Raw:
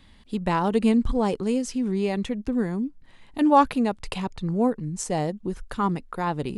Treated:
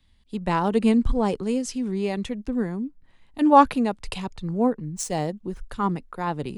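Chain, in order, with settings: 4.46–5.6 median filter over 3 samples; three-band expander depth 40%

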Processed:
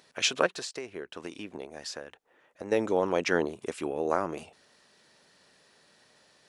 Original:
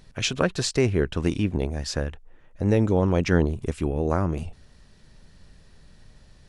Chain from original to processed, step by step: HPF 420 Hz 12 dB/oct; 0.46–2.72 compressor 6:1, threshold -36 dBFS, peak gain reduction 14.5 dB

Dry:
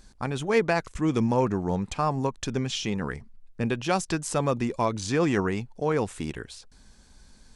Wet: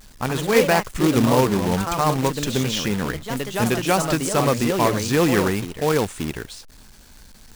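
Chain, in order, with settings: echoes that change speed 97 ms, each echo +2 st, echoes 2, each echo -6 dB; companded quantiser 4-bit; gain +5 dB

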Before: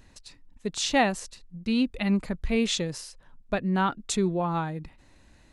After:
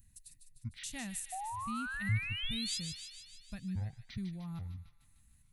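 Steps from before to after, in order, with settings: trilling pitch shifter -10.5 st, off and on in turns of 0.417 s; EQ curve 140 Hz 0 dB, 230 Hz -8 dB, 420 Hz -28 dB, 600 Hz -23 dB, 1200 Hz -19 dB, 1800 Hz -12 dB, 2700 Hz -11 dB, 5300 Hz -10 dB, 10000 Hz +13 dB; painted sound rise, 1.32–2.8, 720–5200 Hz -33 dBFS; on a send: thin delay 0.151 s, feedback 61%, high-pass 1900 Hz, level -7 dB; on the sum: gain -7.5 dB

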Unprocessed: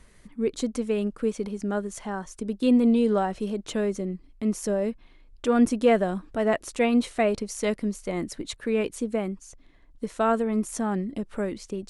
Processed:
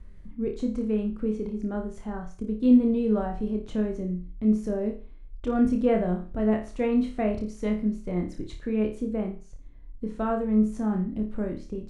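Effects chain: RIAA curve playback; flutter echo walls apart 4.8 m, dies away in 0.36 s; gain -8 dB

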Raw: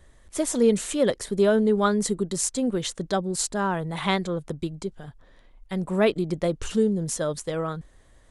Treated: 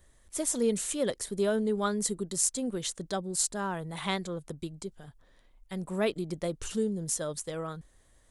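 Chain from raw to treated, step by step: high shelf 6100 Hz +11.5 dB; gain -8 dB

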